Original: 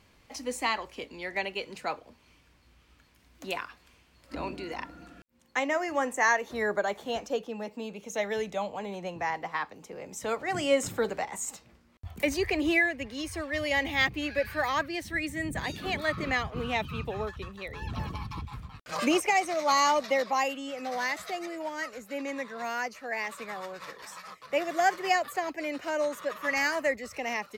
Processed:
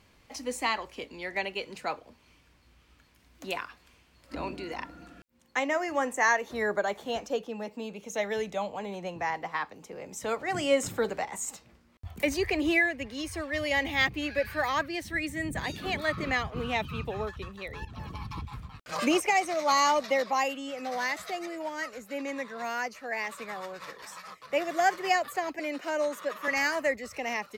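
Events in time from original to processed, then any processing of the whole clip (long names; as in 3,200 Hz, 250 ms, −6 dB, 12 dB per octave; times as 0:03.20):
0:17.85–0:18.31: fade in, from −13 dB
0:25.59–0:26.48: Butterworth high-pass 170 Hz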